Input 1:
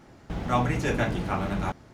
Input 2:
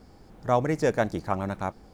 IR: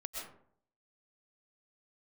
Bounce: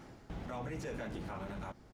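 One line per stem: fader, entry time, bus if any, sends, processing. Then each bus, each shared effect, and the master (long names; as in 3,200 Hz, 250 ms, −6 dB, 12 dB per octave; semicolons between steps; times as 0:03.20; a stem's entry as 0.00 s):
+0.5 dB, 0.00 s, no send, automatic ducking −11 dB, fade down 0.35 s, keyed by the second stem
−11.5 dB, 20 ms, no send, no processing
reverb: not used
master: soft clipping −24 dBFS, distortion −19 dB; brickwall limiter −34 dBFS, peak gain reduction 9 dB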